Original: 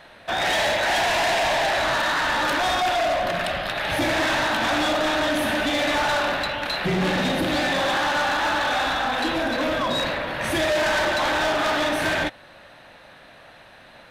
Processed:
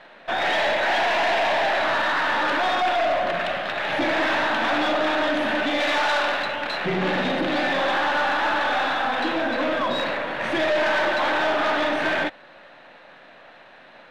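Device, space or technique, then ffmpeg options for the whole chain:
crystal radio: -filter_complex "[0:a]asettb=1/sr,asplit=3[link_01][link_02][link_03];[link_01]atrim=end=5.804[link_04];[link_02]atrim=start=5.8:end=6.43,asetpts=PTS-STARTPTS,afade=type=in:duration=0.004:curve=qsin,afade=type=out:start_time=0.626:duration=0.004:curve=qsin,aemphasis=mode=production:type=bsi[link_05];[link_03]atrim=start=6.426[link_06];[link_04][link_05]acrossfade=duration=0.004:curve1=hsin:curve2=qsin[link_07];[link_07][link_06]acrossfade=duration=0.004:curve1=qsin:curve2=hsin,highpass=210,lowpass=3300,aeval=exprs='if(lt(val(0),0),0.708*val(0),val(0))':channel_layout=same,volume=2dB"

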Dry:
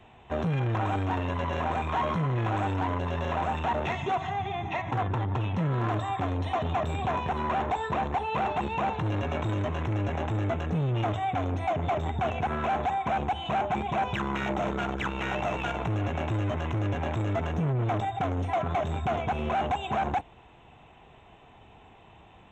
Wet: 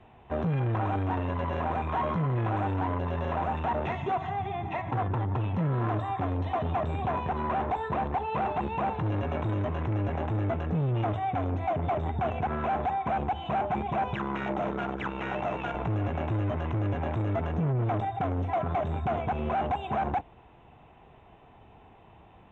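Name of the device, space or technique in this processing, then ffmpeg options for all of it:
through cloth: -filter_complex "[0:a]lowpass=6700,highshelf=frequency=3200:gain=-14,asettb=1/sr,asplit=3[link_01][link_02][link_03];[link_01]atrim=end=14.144[link_04];[link_02]atrim=start=14.14:end=15.75,asetpts=PTS-STARTPTS,afade=type=in:duration=0.004:curve=qsin,afade=type=out:start_time=1.606:duration=0.004:curve=qsin,highpass=frequency=120:poles=1[link_05];[link_03]atrim=start=15.746[link_06];[link_04][link_05]acrossfade=duration=0.004:curve1=hsin:curve2=qsin[link_07];[link_07][link_06]acrossfade=duration=0.004:curve1=qsin:curve2=hsin"

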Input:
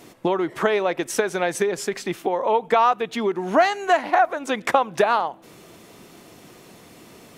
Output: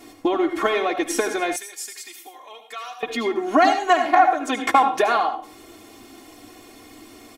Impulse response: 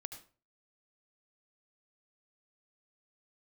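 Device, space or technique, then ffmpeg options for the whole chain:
microphone above a desk: -filter_complex "[0:a]aecho=1:1:2.8:0.86[link_01];[1:a]atrim=start_sample=2205[link_02];[link_01][link_02]afir=irnorm=-1:irlink=0,aecho=1:1:3.7:0.47,asettb=1/sr,asplit=3[link_03][link_04][link_05];[link_03]atrim=end=1.564[link_06];[link_04]atrim=start=1.56:end=3.03,asetpts=PTS-STARTPTS,afade=type=in:duration=0.004:curve=qsin,afade=type=out:start_time=1.466:duration=0.004:curve=qsin,aderivative[link_07];[link_05]atrim=start=3.026[link_08];[link_06][link_07]acrossfade=duration=0.004:curve1=hsin:curve2=qsin[link_09];[link_09][link_08]acrossfade=duration=0.004:curve1=qsin:curve2=hsin,volume=2dB"

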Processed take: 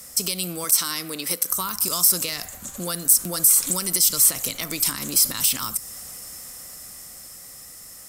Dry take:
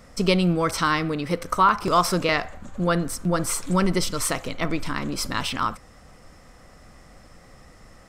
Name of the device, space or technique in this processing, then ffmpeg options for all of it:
FM broadcast chain: -filter_complex "[0:a]asettb=1/sr,asplit=3[link_01][link_02][link_03];[link_01]atrim=end=0.644[link_04];[link_02]atrim=start=0.64:end=1.5,asetpts=PTS-STARTPTS,afade=type=in:duration=0.004:curve=qsin,afade=type=out:start_time=0.856:duration=0.004:curve=qsin,highpass=240[link_05];[link_03]atrim=start=1.496[link_06];[link_04][link_05]acrossfade=duration=0.004:curve1=hsin:curve2=qsin[link_07];[link_07][link_06]acrossfade=duration=0.004:curve1=qsin:curve2=hsin,highpass=frequency=69:poles=1,dynaudnorm=framelen=340:gausssize=11:maxgain=6dB,acrossover=split=260|4800[link_08][link_09][link_10];[link_08]acompressor=threshold=-32dB:ratio=4[link_11];[link_09]acompressor=threshold=-28dB:ratio=4[link_12];[link_10]acompressor=threshold=-32dB:ratio=4[link_13];[link_11][link_12][link_13]amix=inputs=3:normalize=0,aemphasis=mode=production:type=75fm,alimiter=limit=-15dB:level=0:latency=1:release=64,asoftclip=type=hard:threshold=-16.5dB,lowpass=frequency=15000:width=0.5412,lowpass=frequency=15000:width=1.3066,aemphasis=mode=production:type=75fm,volume=-3dB"

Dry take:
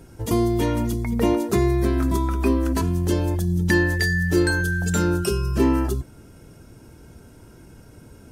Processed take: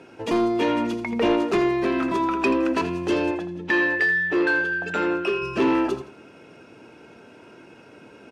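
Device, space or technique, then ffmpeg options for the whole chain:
intercom: -filter_complex "[0:a]highpass=330,lowpass=3500,equalizer=frequency=2600:width_type=o:width=0.21:gain=11,asoftclip=type=tanh:threshold=-20dB,asettb=1/sr,asplit=3[link_01][link_02][link_03];[link_01]atrim=end=3.314[link_04];[link_02]atrim=start=3.31:end=5.42,asetpts=PTS-STARTPTS,afade=type=in:duration=0.004:curve=qsin,afade=type=out:start_time=2.106:duration=0.004:curve=qsin,bass=frequency=250:gain=-8,treble=frequency=4000:gain=-14[link_05];[link_03]atrim=start=5.416[link_06];[link_04][link_05]acrossfade=duration=0.004:curve1=hsin:curve2=qsin[link_07];[link_07][link_06]acrossfade=duration=0.004:curve1=qsin:curve2=hsin,aecho=1:1:82|164|246:0.251|0.0754|0.0226,volume=5.5dB"

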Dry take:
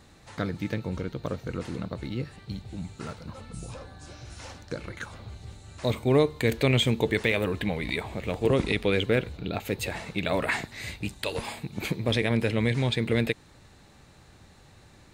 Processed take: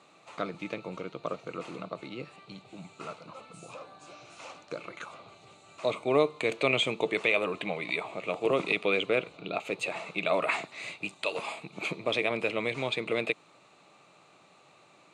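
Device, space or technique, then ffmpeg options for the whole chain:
television speaker: -af "highpass=frequency=180:width=0.5412,highpass=frequency=180:width=1.3066,equalizer=frequency=230:width_type=q:width=4:gain=-10,equalizer=frequency=650:width_type=q:width=4:gain=7,equalizer=frequency=1200:width_type=q:width=4:gain=10,equalizer=frequency=1700:width_type=q:width=4:gain=-9,equalizer=frequency=2500:width_type=q:width=4:gain=9,equalizer=frequency=5300:width_type=q:width=4:gain=-6,lowpass=frequency=8600:width=0.5412,lowpass=frequency=8600:width=1.3066,volume=-3.5dB"

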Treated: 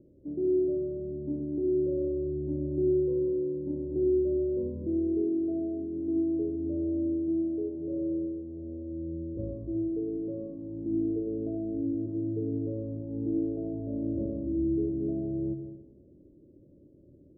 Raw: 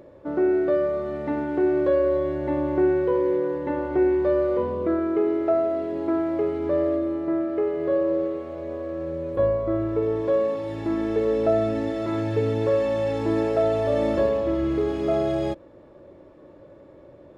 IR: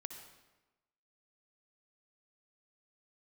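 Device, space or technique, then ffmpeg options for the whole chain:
next room: -filter_complex "[0:a]lowpass=frequency=340:width=0.5412,lowpass=frequency=340:width=1.3066[link_01];[1:a]atrim=start_sample=2205[link_02];[link_01][link_02]afir=irnorm=-1:irlink=0"

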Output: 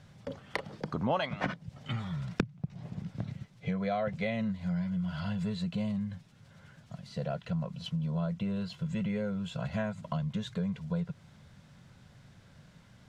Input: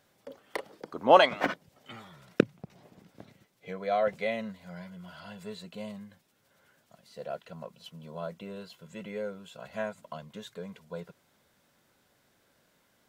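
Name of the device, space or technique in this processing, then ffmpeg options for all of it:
jukebox: -af "lowpass=6600,lowshelf=frequency=220:width_type=q:width=1.5:gain=13.5,acompressor=threshold=-37dB:ratio=4,volume=6.5dB"

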